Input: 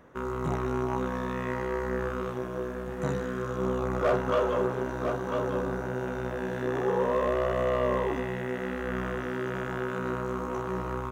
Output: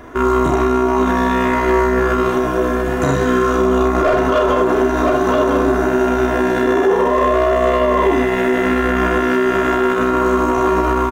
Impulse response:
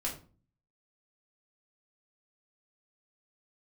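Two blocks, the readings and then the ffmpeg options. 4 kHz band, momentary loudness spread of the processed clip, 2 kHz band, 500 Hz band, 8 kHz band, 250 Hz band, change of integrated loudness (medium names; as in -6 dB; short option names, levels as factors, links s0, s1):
+16.0 dB, 2 LU, +15.5 dB, +14.0 dB, no reading, +16.5 dB, +15.0 dB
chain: -af "aecho=1:1:2.9:0.68,aecho=1:1:36|74:0.596|0.316,alimiter=level_in=12.6:limit=0.891:release=50:level=0:latency=1,volume=0.531"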